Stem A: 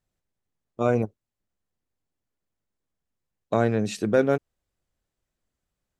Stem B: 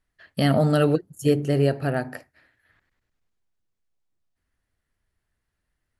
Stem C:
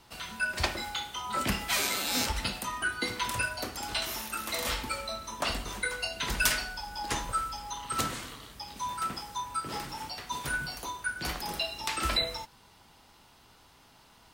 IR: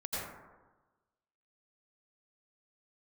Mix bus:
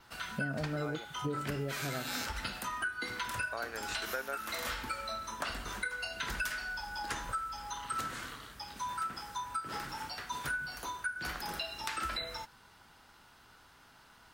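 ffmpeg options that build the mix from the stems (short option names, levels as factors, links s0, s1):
-filter_complex "[0:a]highpass=740,volume=0.501[s0];[1:a]tiltshelf=f=1400:g=8,volume=0.237[s1];[2:a]adynamicequalizer=threshold=0.00178:dfrequency=8700:dqfactor=5.6:tfrequency=8700:tqfactor=5.6:attack=5:release=100:ratio=0.375:range=2:mode=cutabove:tftype=bell,volume=0.668[s2];[s0][s1][s2]amix=inputs=3:normalize=0,equalizer=f=1500:w=2.3:g=9.5,acompressor=threshold=0.02:ratio=5"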